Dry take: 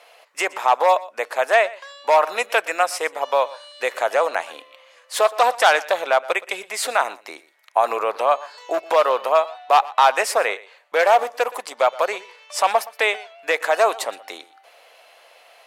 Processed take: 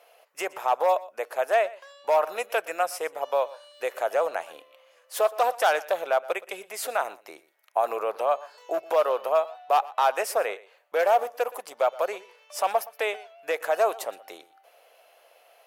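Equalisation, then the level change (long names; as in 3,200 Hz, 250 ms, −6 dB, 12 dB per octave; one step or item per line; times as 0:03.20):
graphic EQ with 10 bands 250 Hz −11 dB, 500 Hz −3 dB, 1,000 Hz −9 dB, 2,000 Hz −10 dB, 4,000 Hz −11 dB, 8,000 Hz −10 dB
+3.0 dB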